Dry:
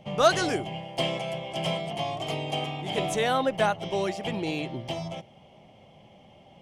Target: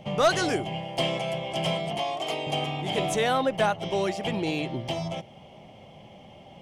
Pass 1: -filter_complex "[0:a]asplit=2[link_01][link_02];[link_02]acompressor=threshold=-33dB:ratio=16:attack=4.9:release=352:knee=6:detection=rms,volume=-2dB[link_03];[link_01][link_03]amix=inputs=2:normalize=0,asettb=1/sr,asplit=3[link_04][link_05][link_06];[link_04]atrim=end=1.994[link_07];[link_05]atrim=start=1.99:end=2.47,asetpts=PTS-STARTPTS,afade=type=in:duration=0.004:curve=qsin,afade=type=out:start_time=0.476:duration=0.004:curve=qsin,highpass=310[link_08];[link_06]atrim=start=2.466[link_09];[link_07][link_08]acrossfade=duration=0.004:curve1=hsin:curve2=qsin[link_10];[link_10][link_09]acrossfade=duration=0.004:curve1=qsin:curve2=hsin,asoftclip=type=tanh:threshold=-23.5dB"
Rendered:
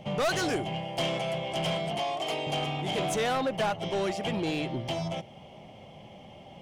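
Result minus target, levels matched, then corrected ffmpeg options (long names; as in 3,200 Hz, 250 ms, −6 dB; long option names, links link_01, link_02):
soft clipping: distortion +11 dB
-filter_complex "[0:a]asplit=2[link_01][link_02];[link_02]acompressor=threshold=-33dB:ratio=16:attack=4.9:release=352:knee=6:detection=rms,volume=-2dB[link_03];[link_01][link_03]amix=inputs=2:normalize=0,asettb=1/sr,asplit=3[link_04][link_05][link_06];[link_04]atrim=end=1.994[link_07];[link_05]atrim=start=1.99:end=2.47,asetpts=PTS-STARTPTS,afade=type=in:duration=0.004:curve=qsin,afade=type=out:start_time=0.476:duration=0.004:curve=qsin,highpass=310[link_08];[link_06]atrim=start=2.466[link_09];[link_07][link_08]acrossfade=duration=0.004:curve1=hsin:curve2=qsin[link_10];[link_10][link_09]acrossfade=duration=0.004:curve1=qsin:curve2=hsin,asoftclip=type=tanh:threshold=-12dB"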